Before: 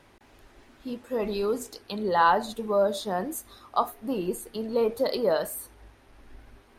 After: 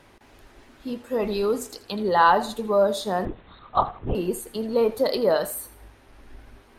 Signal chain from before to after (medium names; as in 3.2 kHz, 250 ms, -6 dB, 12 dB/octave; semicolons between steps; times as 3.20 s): thinning echo 82 ms, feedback 33%, level -16 dB; 3.25–4.15 s: LPC vocoder at 8 kHz whisper; trim +3.5 dB